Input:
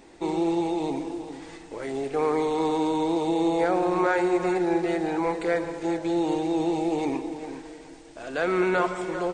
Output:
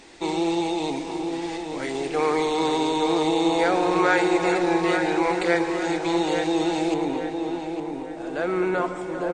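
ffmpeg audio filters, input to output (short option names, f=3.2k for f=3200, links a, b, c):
-filter_complex "[0:a]asetnsamples=n=441:p=0,asendcmd='6.94 equalizer g -4.5',equalizer=f=4.1k:w=0.36:g=10,asplit=2[a][b];[b]adelay=858,lowpass=f=2.2k:p=1,volume=-5.5dB,asplit=2[c][d];[d]adelay=858,lowpass=f=2.2k:p=1,volume=0.49,asplit=2[e][f];[f]adelay=858,lowpass=f=2.2k:p=1,volume=0.49,asplit=2[g][h];[h]adelay=858,lowpass=f=2.2k:p=1,volume=0.49,asplit=2[i][j];[j]adelay=858,lowpass=f=2.2k:p=1,volume=0.49,asplit=2[k][l];[l]adelay=858,lowpass=f=2.2k:p=1,volume=0.49[m];[a][c][e][g][i][k][m]amix=inputs=7:normalize=0"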